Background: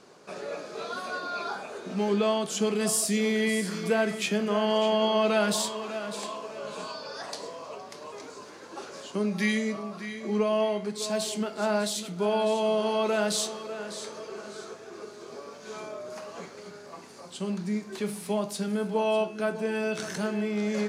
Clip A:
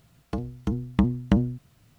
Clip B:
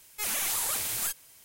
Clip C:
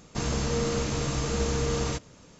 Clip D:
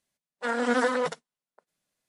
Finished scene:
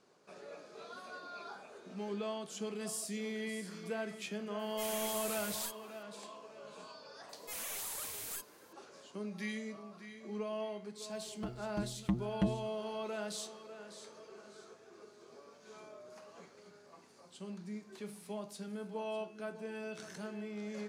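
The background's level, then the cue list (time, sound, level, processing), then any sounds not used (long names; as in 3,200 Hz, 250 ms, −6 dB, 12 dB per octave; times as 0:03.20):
background −14 dB
0:04.59: mix in B −11.5 dB
0:07.29: mix in B −12 dB
0:11.10: mix in A −15 dB + comb filter 5.7 ms, depth 82%
not used: C, D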